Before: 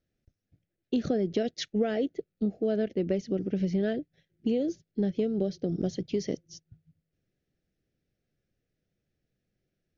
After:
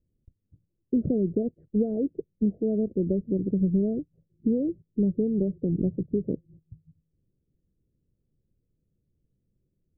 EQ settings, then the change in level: inverse Chebyshev low-pass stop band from 3 kHz, stop band 80 dB; bass shelf 190 Hz +10 dB; 0.0 dB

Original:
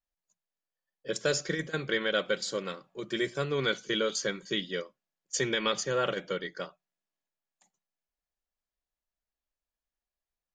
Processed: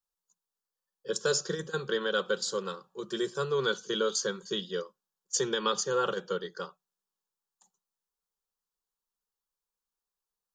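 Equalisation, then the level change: bass shelf 160 Hz -10.5 dB; static phaser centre 430 Hz, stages 8; +4.0 dB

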